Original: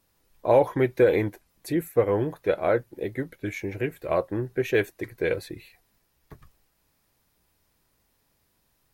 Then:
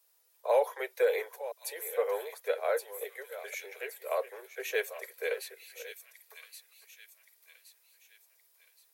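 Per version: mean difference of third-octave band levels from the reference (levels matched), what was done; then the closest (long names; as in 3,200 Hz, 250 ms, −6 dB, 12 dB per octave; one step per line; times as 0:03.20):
13.0 dB: delay that plays each chunk backwards 506 ms, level −13.5 dB
Butterworth high-pass 420 Hz 96 dB per octave
high-shelf EQ 4,500 Hz +12 dB
on a send: delay with a high-pass on its return 1,121 ms, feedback 42%, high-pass 3,200 Hz, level −5.5 dB
on the sum: level −7 dB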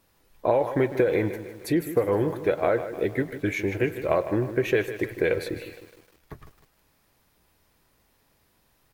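6.0 dB: bass and treble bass −2 dB, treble −4 dB
downward compressor 6 to 1, threshold −25 dBFS, peak gain reduction 11 dB
far-end echo of a speakerphone 100 ms, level −19 dB
feedback echo at a low word length 154 ms, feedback 55%, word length 9 bits, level −12 dB
level +6 dB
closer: second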